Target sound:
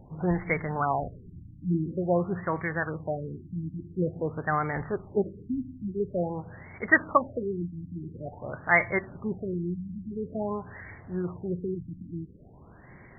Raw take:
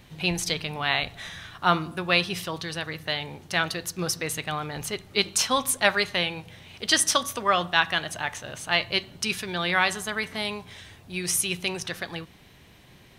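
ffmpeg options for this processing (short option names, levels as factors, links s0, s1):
-af "highshelf=f=2200:g=7,afftfilt=real='re*lt(b*sr/1024,310*pow(2300/310,0.5+0.5*sin(2*PI*0.48*pts/sr)))':imag='im*lt(b*sr/1024,310*pow(2300/310,0.5+0.5*sin(2*PI*0.48*pts/sr)))':win_size=1024:overlap=0.75,volume=1.41"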